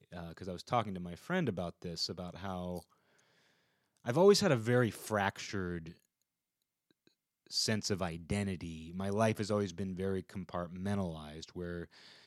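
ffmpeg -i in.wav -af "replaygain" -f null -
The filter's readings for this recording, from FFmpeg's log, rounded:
track_gain = +14.5 dB
track_peak = 0.137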